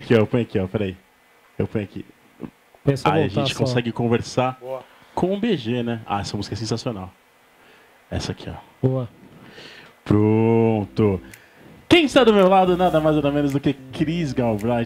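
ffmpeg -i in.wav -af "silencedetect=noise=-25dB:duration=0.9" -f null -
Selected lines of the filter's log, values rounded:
silence_start: 7.04
silence_end: 8.12 | silence_duration: 1.08
silence_start: 9.04
silence_end: 10.07 | silence_duration: 1.02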